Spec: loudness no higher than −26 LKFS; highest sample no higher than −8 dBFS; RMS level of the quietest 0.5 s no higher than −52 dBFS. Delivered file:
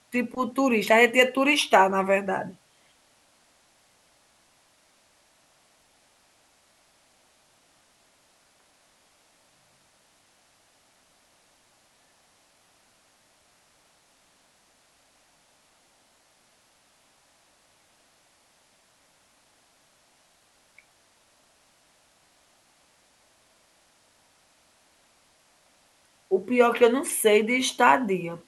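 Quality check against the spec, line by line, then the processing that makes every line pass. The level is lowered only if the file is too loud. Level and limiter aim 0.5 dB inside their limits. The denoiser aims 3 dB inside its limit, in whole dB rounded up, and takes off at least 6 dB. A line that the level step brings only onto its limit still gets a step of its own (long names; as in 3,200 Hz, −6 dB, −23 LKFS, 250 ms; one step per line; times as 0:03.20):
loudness −21.5 LKFS: out of spec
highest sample −4.5 dBFS: out of spec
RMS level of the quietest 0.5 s −63 dBFS: in spec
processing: level −5 dB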